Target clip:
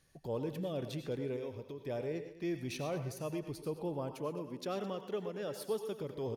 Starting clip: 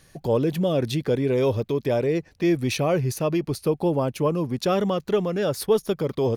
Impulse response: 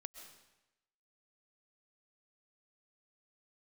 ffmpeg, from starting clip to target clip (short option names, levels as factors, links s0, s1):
-filter_complex "[0:a]asettb=1/sr,asplit=3[s0][s1][s2];[s0]atrim=end=1.364[s3];[s1]atrim=start=1.36:end=1.87,asetpts=PTS-STARTPTS,afade=t=in:d=0.004:c=qsin,afade=t=out:st=0.506:d=0.004:c=qsin,acompressor=threshold=0.0501:ratio=6[s4];[s2]atrim=start=1.866[s5];[s3][s4]acrossfade=d=0.004:c1=hsin:c2=qsin[s6];[s6][s5]acrossfade=d=0.004:c1=qsin:c2=hsin,asettb=1/sr,asplit=3[s7][s8][s9];[s7]atrim=end=4.144[s10];[s8]atrim=start=4.14:end=6,asetpts=PTS-STARTPTS,afade=t=in:d=0.004:c=qsin,afade=t=out:st=1.856:d=0.004:c=qsin,highpass=170[s11];[s9]atrim=start=5.996[s12];[s10][s11]acrossfade=d=0.004:c1=hsin:c2=qsin[s13];[s13][s12]acrossfade=d=0.004:c1=qsin:c2=hsin,aecho=1:1:212:0.15[s14];[1:a]atrim=start_sample=2205,afade=t=out:st=0.25:d=0.01,atrim=end_sample=11466,asetrate=61740,aresample=44100[s15];[s14][s15]afir=irnorm=-1:irlink=0,volume=0.447"